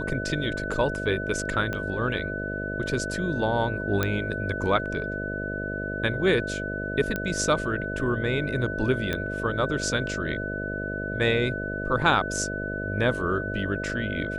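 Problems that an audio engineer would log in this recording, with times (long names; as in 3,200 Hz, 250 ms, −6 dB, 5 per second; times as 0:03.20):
mains buzz 50 Hz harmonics 13 −33 dBFS
whistle 1,500 Hz −32 dBFS
0:01.73: click −17 dBFS
0:04.03: click −10 dBFS
0:07.16: click −14 dBFS
0:09.13: click −14 dBFS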